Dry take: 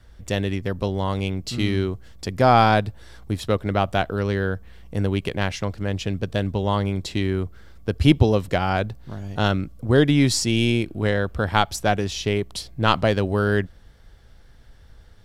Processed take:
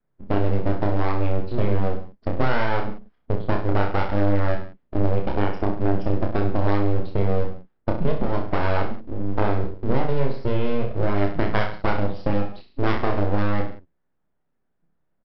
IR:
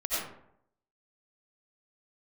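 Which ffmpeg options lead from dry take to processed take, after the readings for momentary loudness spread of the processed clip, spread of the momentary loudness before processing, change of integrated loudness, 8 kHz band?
7 LU, 12 LU, −3.0 dB, below −30 dB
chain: -af "highpass=frequency=75:width=0.5412,highpass=frequency=75:width=1.3066,afftdn=noise_reduction=28:noise_floor=-29,lowpass=1200,acompressor=threshold=-24dB:ratio=16,aresample=11025,aeval=exprs='abs(val(0))':channel_layout=same,aresample=44100,aecho=1:1:30|63|99.3|139.2|183.2:0.631|0.398|0.251|0.158|0.1,volume=7dB"

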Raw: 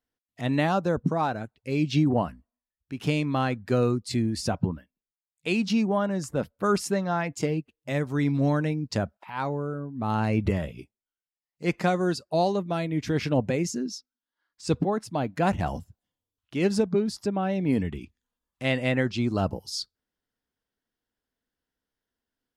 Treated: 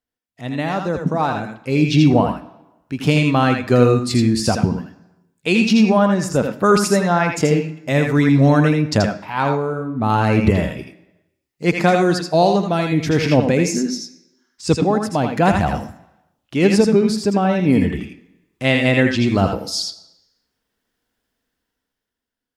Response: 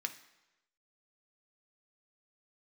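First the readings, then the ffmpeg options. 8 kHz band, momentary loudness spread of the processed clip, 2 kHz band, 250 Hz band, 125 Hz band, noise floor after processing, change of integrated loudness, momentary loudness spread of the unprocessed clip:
+10.5 dB, 11 LU, +11.0 dB, +10.0 dB, +9.5 dB, −81 dBFS, +10.0 dB, 9 LU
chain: -filter_complex "[0:a]dynaudnorm=framelen=200:gausssize=11:maxgain=13dB,asplit=2[link_01][link_02];[1:a]atrim=start_sample=2205,adelay=81[link_03];[link_02][link_03]afir=irnorm=-1:irlink=0,volume=-3.5dB[link_04];[link_01][link_04]amix=inputs=2:normalize=0,volume=-1dB"

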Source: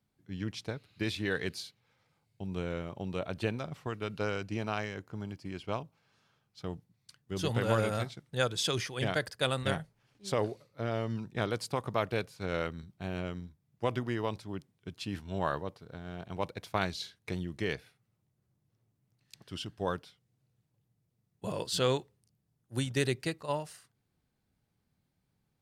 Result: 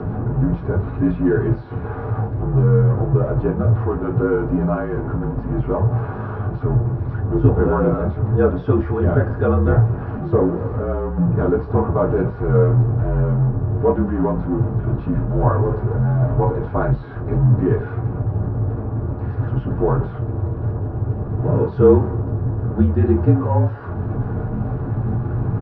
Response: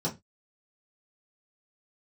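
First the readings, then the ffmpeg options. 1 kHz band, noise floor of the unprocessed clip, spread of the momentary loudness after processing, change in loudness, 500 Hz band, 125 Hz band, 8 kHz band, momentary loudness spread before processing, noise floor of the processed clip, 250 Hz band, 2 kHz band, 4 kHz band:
+11.5 dB, −79 dBFS, 8 LU, +15.5 dB, +15.0 dB, +22.0 dB, below −35 dB, 13 LU, −29 dBFS, +18.0 dB, +3.5 dB, below −15 dB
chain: -filter_complex "[0:a]aeval=exprs='val(0)+0.5*0.0355*sgn(val(0))':channel_layout=same,lowpass=frequency=1600:width=0.5412,lowpass=frequency=1600:width=1.3066,acompressor=mode=upward:threshold=-38dB:ratio=2.5,asplit=2[link_01][link_02];[link_02]adelay=200,highpass=300,lowpass=3400,asoftclip=type=hard:threshold=-22.5dB,volume=-27dB[link_03];[link_01][link_03]amix=inputs=2:normalize=0[link_04];[1:a]atrim=start_sample=2205[link_05];[link_04][link_05]afir=irnorm=-1:irlink=0,afreqshift=-46"

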